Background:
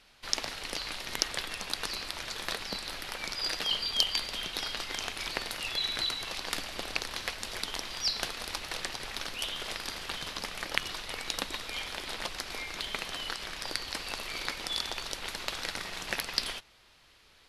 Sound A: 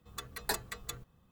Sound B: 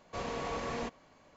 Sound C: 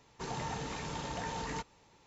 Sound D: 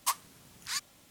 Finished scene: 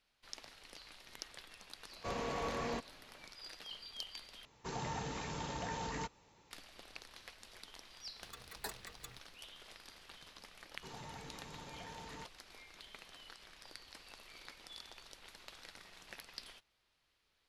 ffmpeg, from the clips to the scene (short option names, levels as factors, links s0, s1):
-filter_complex "[3:a]asplit=2[s0][s1];[0:a]volume=0.119,asplit=2[s2][s3];[s2]atrim=end=4.454[s4];[s0]atrim=end=2.06,asetpts=PTS-STARTPTS,volume=0.75[s5];[s3]atrim=start=6.506[s6];[2:a]atrim=end=1.36,asetpts=PTS-STARTPTS,volume=0.794,afade=t=in:d=0.004:c=hsin,afade=t=out:st=1.356:d=0.004:c=hsin,adelay=1910[s7];[1:a]atrim=end=1.31,asetpts=PTS-STARTPTS,volume=0.299,afade=t=in:d=0.004:c=hsin,afade=t=out:st=1.306:d=0.004:c=hsin,adelay=8150[s8];[s1]atrim=end=2.06,asetpts=PTS-STARTPTS,volume=0.251,afade=t=in:d=0.004:c=hsin,afade=t=out:st=2.056:d=0.004:c=hsin,adelay=10630[s9];[s4][s5]acrossfade=d=0.004:c1=hsin:c2=hsin[s10];[s10][s6]acrossfade=d=0.004:c1=hsin:c2=hsin[s11];[s11][s7][s8][s9]amix=inputs=4:normalize=0"